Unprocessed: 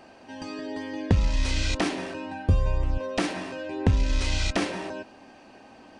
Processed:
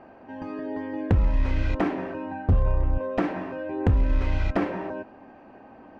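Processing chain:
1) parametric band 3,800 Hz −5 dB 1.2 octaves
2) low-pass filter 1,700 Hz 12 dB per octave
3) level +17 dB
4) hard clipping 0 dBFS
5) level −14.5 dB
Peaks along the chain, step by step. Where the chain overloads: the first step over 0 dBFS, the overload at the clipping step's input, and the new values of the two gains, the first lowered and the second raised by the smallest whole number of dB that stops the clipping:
−9.5, −9.5, +7.5, 0.0, −14.5 dBFS
step 3, 7.5 dB
step 3 +9 dB, step 5 −6.5 dB

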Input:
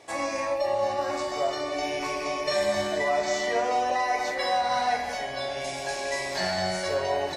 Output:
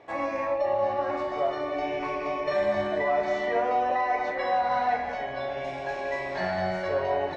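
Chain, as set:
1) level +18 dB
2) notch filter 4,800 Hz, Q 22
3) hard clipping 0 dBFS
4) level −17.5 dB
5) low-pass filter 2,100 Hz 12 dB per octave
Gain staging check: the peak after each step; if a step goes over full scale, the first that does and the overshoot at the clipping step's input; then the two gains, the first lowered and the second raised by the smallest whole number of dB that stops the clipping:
+4.0, +4.0, 0.0, −17.5, −17.0 dBFS
step 1, 4.0 dB
step 1 +14 dB, step 4 −13.5 dB

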